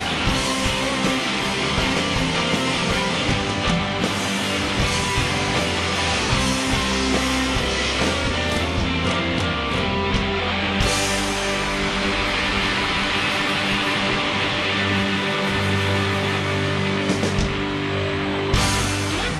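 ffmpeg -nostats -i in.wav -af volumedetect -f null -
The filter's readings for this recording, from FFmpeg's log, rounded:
mean_volume: -21.2 dB
max_volume: -6.2 dB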